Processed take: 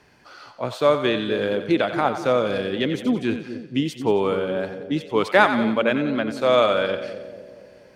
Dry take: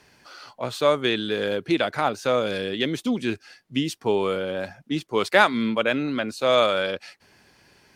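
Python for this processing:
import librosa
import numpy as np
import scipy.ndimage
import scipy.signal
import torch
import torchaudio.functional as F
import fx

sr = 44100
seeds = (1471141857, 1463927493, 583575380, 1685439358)

p1 = fx.high_shelf(x, sr, hz=2800.0, db=-8.5)
p2 = p1 + fx.echo_split(p1, sr, split_hz=590.0, low_ms=238, high_ms=90, feedback_pct=52, wet_db=-10, dry=0)
y = p2 * librosa.db_to_amplitude(2.5)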